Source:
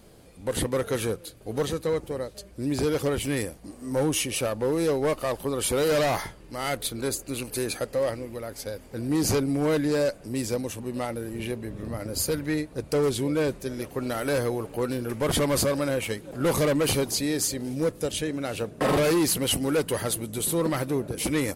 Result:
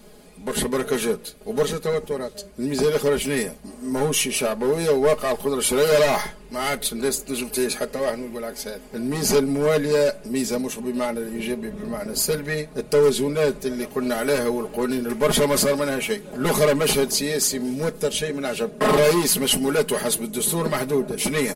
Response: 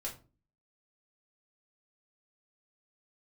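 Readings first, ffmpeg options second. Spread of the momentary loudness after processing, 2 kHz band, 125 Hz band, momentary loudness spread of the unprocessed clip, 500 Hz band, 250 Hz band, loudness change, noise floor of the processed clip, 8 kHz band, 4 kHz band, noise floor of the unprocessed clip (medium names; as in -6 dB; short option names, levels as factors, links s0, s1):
10 LU, +5.5 dB, 0.0 dB, 10 LU, +5.5 dB, +2.5 dB, +4.5 dB, -44 dBFS, +5.5 dB, +5.5 dB, -48 dBFS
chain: -filter_complex "[0:a]equalizer=f=79:w=1.6:g=-11.5,aecho=1:1:4.8:0.89,asplit=2[s0][s1];[1:a]atrim=start_sample=2205[s2];[s1][s2]afir=irnorm=-1:irlink=0,volume=0.211[s3];[s0][s3]amix=inputs=2:normalize=0,volume=1.26"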